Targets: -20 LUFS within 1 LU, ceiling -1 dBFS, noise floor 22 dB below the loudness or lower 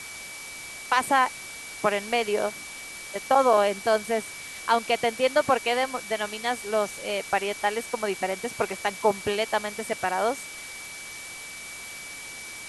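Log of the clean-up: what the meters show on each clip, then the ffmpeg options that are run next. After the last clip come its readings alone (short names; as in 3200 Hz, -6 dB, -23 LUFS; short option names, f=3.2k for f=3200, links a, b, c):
steady tone 2300 Hz; tone level -40 dBFS; noise floor -40 dBFS; noise floor target -49 dBFS; loudness -27.0 LUFS; peak -7.5 dBFS; loudness target -20.0 LUFS
-> -af "bandreject=f=2.3k:w=30"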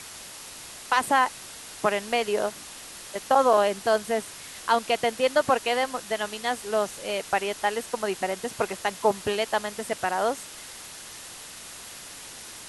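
steady tone none; noise floor -42 dBFS; noise floor target -48 dBFS
-> -af "afftdn=nr=6:nf=-42"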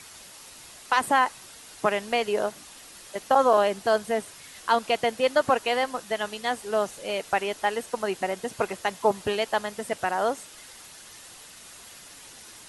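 noise floor -47 dBFS; noise floor target -48 dBFS
-> -af "afftdn=nr=6:nf=-47"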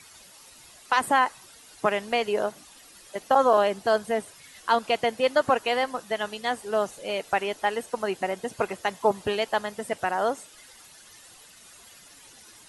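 noise floor -51 dBFS; loudness -26.0 LUFS; peak -8.0 dBFS; loudness target -20.0 LUFS
-> -af "volume=6dB"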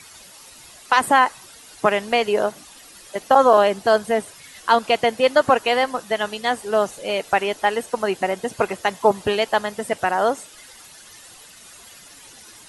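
loudness -20.0 LUFS; peak -2.0 dBFS; noise floor -45 dBFS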